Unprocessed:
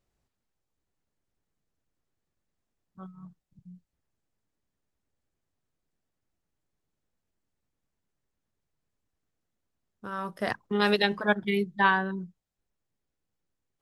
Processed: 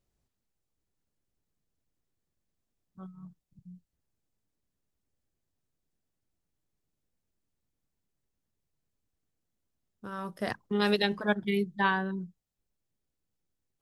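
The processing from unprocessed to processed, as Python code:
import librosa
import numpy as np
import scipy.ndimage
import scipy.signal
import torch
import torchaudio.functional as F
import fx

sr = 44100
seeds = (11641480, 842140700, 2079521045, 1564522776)

y = fx.peak_eq(x, sr, hz=1300.0, db=-5.0, octaves=2.9)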